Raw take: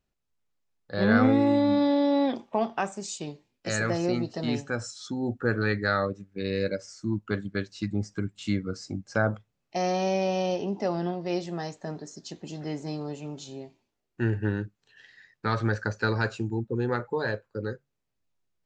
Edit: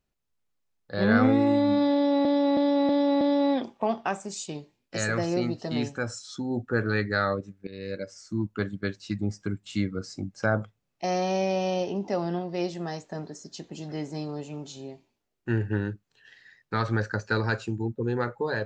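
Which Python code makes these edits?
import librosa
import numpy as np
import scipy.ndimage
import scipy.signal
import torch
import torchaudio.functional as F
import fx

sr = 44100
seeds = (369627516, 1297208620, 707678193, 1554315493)

y = fx.edit(x, sr, fx.repeat(start_s=1.93, length_s=0.32, count=5),
    fx.fade_in_from(start_s=6.39, length_s=0.67, floor_db=-14.5), tone=tone)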